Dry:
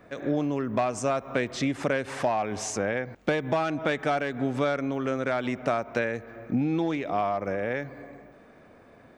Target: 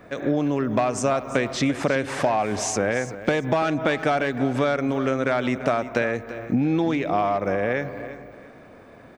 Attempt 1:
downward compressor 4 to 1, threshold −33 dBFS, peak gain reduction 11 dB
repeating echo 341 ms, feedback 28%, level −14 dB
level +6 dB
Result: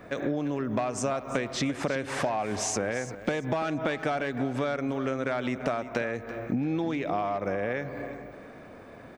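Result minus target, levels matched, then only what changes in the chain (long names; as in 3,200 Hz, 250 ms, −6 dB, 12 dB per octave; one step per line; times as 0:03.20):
downward compressor: peak gain reduction +7.5 dB
change: downward compressor 4 to 1, threshold −23 dBFS, peak gain reduction 3.5 dB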